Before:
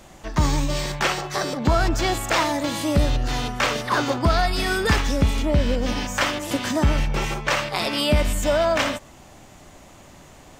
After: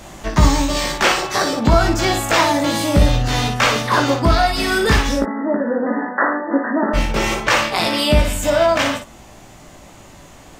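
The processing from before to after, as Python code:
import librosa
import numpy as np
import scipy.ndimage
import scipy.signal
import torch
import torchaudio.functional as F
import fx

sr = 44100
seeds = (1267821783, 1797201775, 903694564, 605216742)

y = fx.rider(x, sr, range_db=10, speed_s=0.5)
y = fx.brickwall_bandpass(y, sr, low_hz=200.0, high_hz=2000.0, at=(5.18, 6.93), fade=0.02)
y = fx.room_early_taps(y, sr, ms=(18, 58), db=(-4.5, -6.0))
y = F.gain(torch.from_numpy(y), 4.0).numpy()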